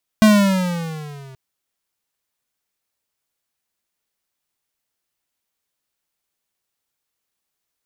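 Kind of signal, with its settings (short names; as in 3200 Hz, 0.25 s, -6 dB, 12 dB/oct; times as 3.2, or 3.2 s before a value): gliding synth tone square, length 1.13 s, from 219 Hz, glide -9 st, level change -31 dB, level -9 dB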